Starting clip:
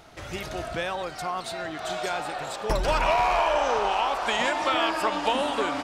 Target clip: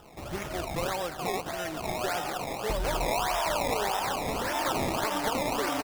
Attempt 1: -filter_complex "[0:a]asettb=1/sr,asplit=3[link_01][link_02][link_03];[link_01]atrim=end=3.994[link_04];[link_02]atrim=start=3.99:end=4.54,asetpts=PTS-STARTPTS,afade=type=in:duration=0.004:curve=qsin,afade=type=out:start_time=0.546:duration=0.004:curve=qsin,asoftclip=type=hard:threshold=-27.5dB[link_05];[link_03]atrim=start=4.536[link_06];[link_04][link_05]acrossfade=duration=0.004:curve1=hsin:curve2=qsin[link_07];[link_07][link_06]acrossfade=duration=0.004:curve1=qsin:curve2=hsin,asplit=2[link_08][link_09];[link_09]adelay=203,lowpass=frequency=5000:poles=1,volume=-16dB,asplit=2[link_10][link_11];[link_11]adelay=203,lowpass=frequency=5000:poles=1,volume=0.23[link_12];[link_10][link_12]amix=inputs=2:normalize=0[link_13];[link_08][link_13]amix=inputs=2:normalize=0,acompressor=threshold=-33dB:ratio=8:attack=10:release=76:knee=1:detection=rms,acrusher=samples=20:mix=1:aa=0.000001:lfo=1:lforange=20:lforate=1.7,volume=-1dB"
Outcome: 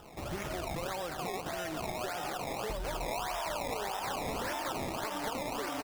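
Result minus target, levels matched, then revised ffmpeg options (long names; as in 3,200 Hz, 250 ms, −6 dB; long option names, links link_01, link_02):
downward compressor: peak gain reduction +7.5 dB
-filter_complex "[0:a]asettb=1/sr,asplit=3[link_01][link_02][link_03];[link_01]atrim=end=3.994[link_04];[link_02]atrim=start=3.99:end=4.54,asetpts=PTS-STARTPTS,afade=type=in:duration=0.004:curve=qsin,afade=type=out:start_time=0.546:duration=0.004:curve=qsin,asoftclip=type=hard:threshold=-27.5dB[link_05];[link_03]atrim=start=4.536[link_06];[link_04][link_05]acrossfade=duration=0.004:curve1=hsin:curve2=qsin[link_07];[link_07][link_06]acrossfade=duration=0.004:curve1=qsin:curve2=hsin,asplit=2[link_08][link_09];[link_09]adelay=203,lowpass=frequency=5000:poles=1,volume=-16dB,asplit=2[link_10][link_11];[link_11]adelay=203,lowpass=frequency=5000:poles=1,volume=0.23[link_12];[link_10][link_12]amix=inputs=2:normalize=0[link_13];[link_08][link_13]amix=inputs=2:normalize=0,acompressor=threshold=-24.5dB:ratio=8:attack=10:release=76:knee=1:detection=rms,acrusher=samples=20:mix=1:aa=0.000001:lfo=1:lforange=20:lforate=1.7,volume=-1dB"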